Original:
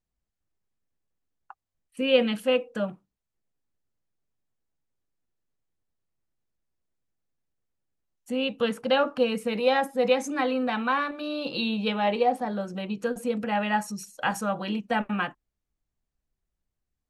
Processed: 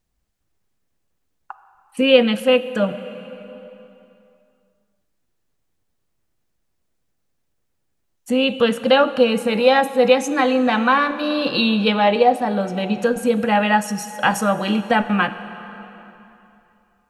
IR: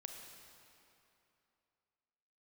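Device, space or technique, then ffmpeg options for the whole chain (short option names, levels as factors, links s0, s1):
ducked reverb: -filter_complex "[0:a]asplit=3[s0][s1][s2];[1:a]atrim=start_sample=2205[s3];[s1][s3]afir=irnorm=-1:irlink=0[s4];[s2]apad=whole_len=753935[s5];[s4][s5]sidechaincompress=threshold=0.0631:ratio=8:attack=6.2:release=1450,volume=1.5[s6];[s0][s6]amix=inputs=2:normalize=0,volume=2"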